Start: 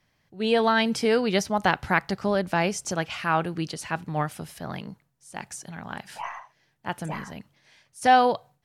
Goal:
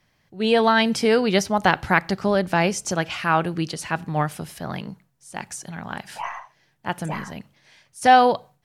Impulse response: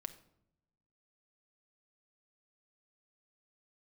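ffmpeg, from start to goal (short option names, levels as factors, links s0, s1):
-filter_complex "[0:a]asplit=2[s0][s1];[1:a]atrim=start_sample=2205,atrim=end_sample=6174[s2];[s1][s2]afir=irnorm=-1:irlink=0,volume=0.376[s3];[s0][s3]amix=inputs=2:normalize=0,volume=1.26"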